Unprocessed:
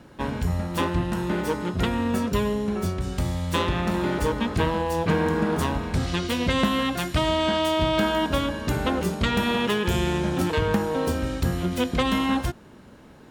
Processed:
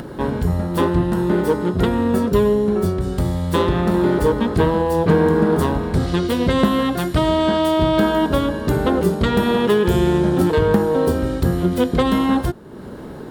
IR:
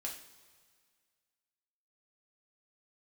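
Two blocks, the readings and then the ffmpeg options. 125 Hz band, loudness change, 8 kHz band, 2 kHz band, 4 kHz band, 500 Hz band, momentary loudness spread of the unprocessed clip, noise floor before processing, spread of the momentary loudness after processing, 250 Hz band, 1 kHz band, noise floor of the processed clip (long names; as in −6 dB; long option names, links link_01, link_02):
+6.0 dB, +6.5 dB, +0.5 dB, +1.5 dB, 0.0 dB, +9.0 dB, 5 LU, −48 dBFS, 5 LU, +7.5 dB, +4.5 dB, −34 dBFS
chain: -af "equalizer=frequency=160:width_type=o:width=0.67:gain=3,equalizer=frequency=400:width_type=o:width=0.67:gain=7,equalizer=frequency=2500:width_type=o:width=0.67:gain=-8,equalizer=frequency=6300:width_type=o:width=0.67:gain=-7,acompressor=mode=upward:threshold=-28dB:ratio=2.5,volume=4.5dB"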